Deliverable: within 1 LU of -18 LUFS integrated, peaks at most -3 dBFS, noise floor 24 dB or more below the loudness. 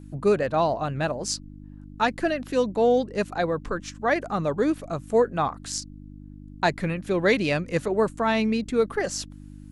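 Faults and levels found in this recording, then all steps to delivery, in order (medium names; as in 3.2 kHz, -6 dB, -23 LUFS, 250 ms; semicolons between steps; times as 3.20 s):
hum 50 Hz; highest harmonic 300 Hz; hum level -41 dBFS; loudness -25.0 LUFS; peak level -8.5 dBFS; loudness target -18.0 LUFS
-> de-hum 50 Hz, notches 6; trim +7 dB; peak limiter -3 dBFS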